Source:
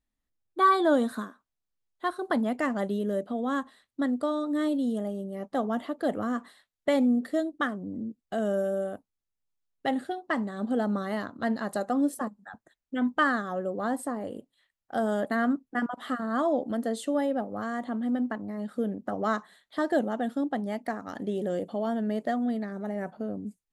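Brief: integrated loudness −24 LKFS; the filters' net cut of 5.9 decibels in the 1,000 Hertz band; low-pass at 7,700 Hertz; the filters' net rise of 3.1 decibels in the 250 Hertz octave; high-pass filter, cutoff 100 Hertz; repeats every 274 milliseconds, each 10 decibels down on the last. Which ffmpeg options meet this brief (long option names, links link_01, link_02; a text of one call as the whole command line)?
ffmpeg -i in.wav -af "highpass=100,lowpass=7700,equalizer=frequency=250:width_type=o:gain=4,equalizer=frequency=1000:width_type=o:gain=-8.5,aecho=1:1:274|548|822|1096:0.316|0.101|0.0324|0.0104,volume=4.5dB" out.wav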